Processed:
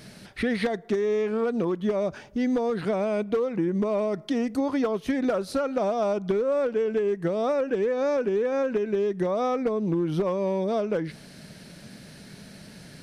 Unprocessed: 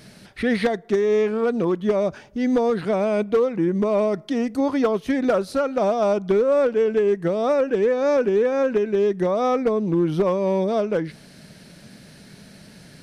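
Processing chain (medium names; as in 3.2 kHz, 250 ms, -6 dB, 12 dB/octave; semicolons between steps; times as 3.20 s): compression, threshold -22 dBFS, peak gain reduction 7 dB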